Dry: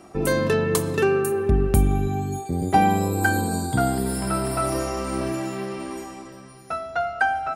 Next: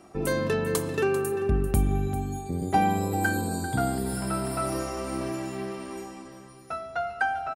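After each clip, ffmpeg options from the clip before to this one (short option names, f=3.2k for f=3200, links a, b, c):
-af "aecho=1:1:393:0.224,volume=-5dB"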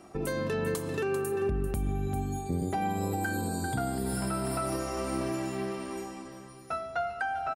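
-af "alimiter=limit=-21.5dB:level=0:latency=1:release=242"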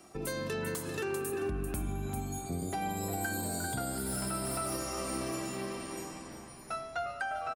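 -filter_complex "[0:a]highshelf=f=2.9k:g=11,acrossover=split=270|2800[a][b][c];[b]asplit=8[d][e][f][g][h][i][j][k];[e]adelay=354,afreqshift=-86,volume=-9dB[l];[f]adelay=708,afreqshift=-172,volume=-13.4dB[m];[g]adelay=1062,afreqshift=-258,volume=-17.9dB[n];[h]adelay=1416,afreqshift=-344,volume=-22.3dB[o];[i]adelay=1770,afreqshift=-430,volume=-26.7dB[p];[j]adelay=2124,afreqshift=-516,volume=-31.2dB[q];[k]adelay=2478,afreqshift=-602,volume=-35.6dB[r];[d][l][m][n][o][p][q][r]amix=inputs=8:normalize=0[s];[c]asoftclip=type=hard:threshold=-30.5dB[t];[a][s][t]amix=inputs=3:normalize=0,volume=-5.5dB"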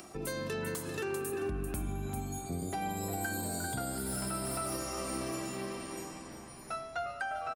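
-af "acompressor=mode=upward:threshold=-43dB:ratio=2.5,volume=-1dB"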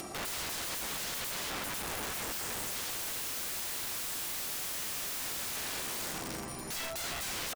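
-af "aeval=exprs='(mod(106*val(0)+1,2)-1)/106':c=same,volume=8dB"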